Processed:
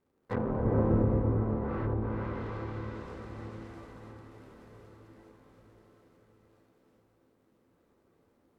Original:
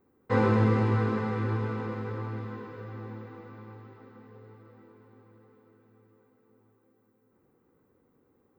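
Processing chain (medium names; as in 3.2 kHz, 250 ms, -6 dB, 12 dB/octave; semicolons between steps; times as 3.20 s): cycle switcher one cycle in 3, muted; gated-style reverb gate 470 ms rising, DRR -7 dB; low-pass that closes with the level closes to 690 Hz, closed at -19 dBFS; trim -7 dB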